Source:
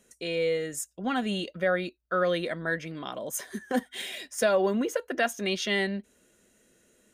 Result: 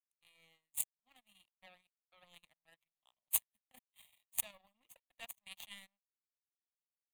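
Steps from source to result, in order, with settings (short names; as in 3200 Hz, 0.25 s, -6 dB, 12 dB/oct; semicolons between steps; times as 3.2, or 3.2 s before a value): pre-emphasis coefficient 0.9; power-law curve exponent 3; fixed phaser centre 1500 Hz, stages 6; gain +14.5 dB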